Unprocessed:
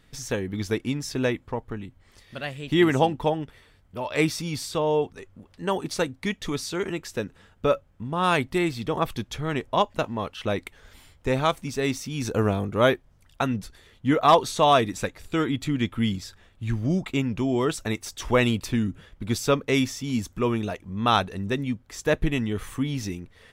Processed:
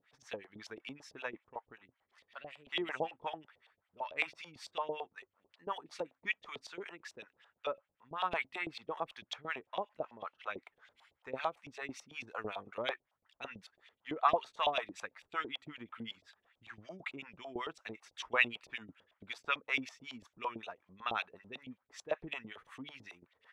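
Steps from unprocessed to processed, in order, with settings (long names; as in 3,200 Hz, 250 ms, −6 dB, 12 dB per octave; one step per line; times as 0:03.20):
dynamic equaliser 2,500 Hz, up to +5 dB, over −43 dBFS, Q 3.8
auto-filter band-pass saw up 9 Hz 630–3,500 Hz
two-band tremolo in antiphase 5.3 Hz, depth 100%, crossover 580 Hz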